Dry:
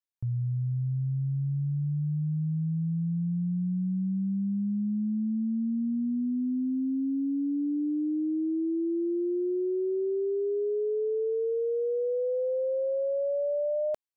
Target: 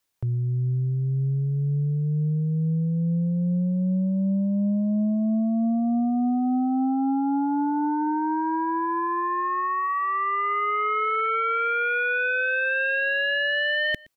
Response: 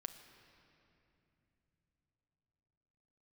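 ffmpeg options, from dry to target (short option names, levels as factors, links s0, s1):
-filter_complex "[0:a]acrossover=split=330[s0][s1];[s0]alimiter=level_in=4.47:limit=0.0631:level=0:latency=1,volume=0.224[s2];[s2][s1]amix=inputs=2:normalize=0,aeval=exprs='0.0562*sin(PI/2*2.82*val(0)/0.0562)':c=same,aecho=1:1:119:0.0631,volume=1.58"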